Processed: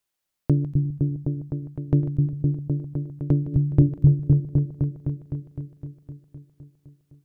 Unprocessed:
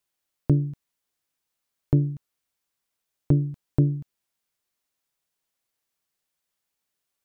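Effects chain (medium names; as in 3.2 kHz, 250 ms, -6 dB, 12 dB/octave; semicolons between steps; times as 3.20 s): chunks repeated in reverse 143 ms, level -13 dB; 3.47–3.89 s: peaking EQ 71 Hz +8 dB 2.7 oct; delay with an opening low-pass 256 ms, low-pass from 200 Hz, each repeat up 1 oct, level 0 dB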